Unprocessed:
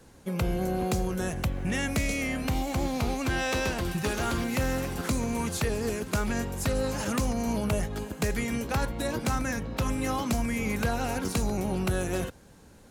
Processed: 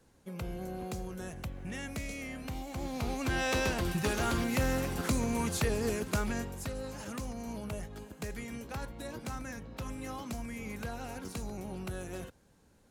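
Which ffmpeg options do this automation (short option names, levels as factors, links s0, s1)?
-af "volume=0.794,afade=t=in:st=2.71:d=0.81:silence=0.354813,afade=t=out:st=6.01:d=0.72:silence=0.334965"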